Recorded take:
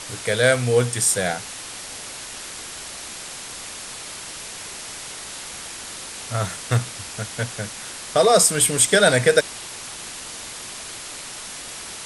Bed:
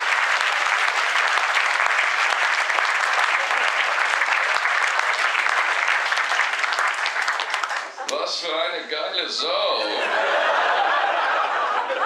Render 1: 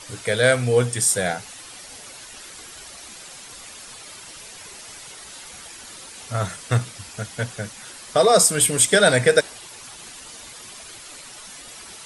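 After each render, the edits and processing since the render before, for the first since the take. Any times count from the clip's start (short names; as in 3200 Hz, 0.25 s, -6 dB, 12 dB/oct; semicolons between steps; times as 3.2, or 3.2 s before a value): denoiser 9 dB, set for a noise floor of -36 dBFS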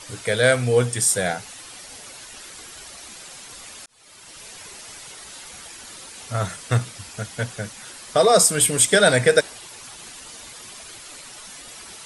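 3.86–4.48 fade in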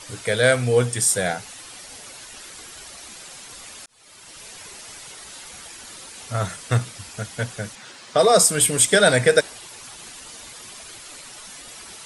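7.75–8.19 BPF 110–6000 Hz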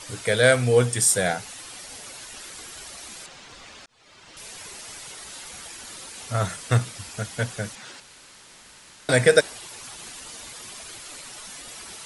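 3.26–4.37 air absorption 110 m; 8–9.09 room tone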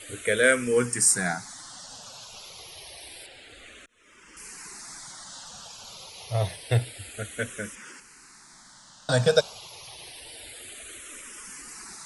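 endless phaser -0.28 Hz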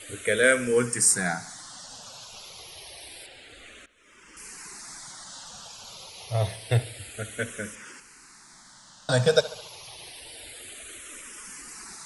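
analogue delay 71 ms, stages 2048, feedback 50%, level -17 dB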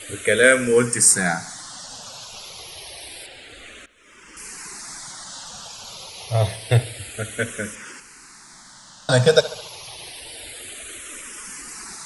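gain +6 dB; limiter -1 dBFS, peak gain reduction 1 dB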